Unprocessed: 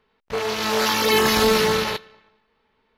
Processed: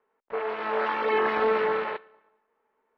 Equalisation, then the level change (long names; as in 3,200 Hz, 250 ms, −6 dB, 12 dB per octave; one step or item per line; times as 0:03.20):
three-way crossover with the lows and the highs turned down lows −23 dB, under 310 Hz, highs −12 dB, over 2,000 Hz
dynamic equaliser 2,200 Hz, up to +4 dB, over −40 dBFS, Q 0.98
high-frequency loss of the air 460 metres
−2.0 dB